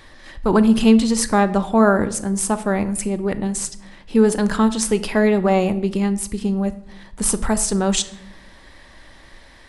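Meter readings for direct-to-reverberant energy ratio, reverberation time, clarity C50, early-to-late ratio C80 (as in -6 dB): 11.0 dB, 0.80 s, 15.5 dB, 18.0 dB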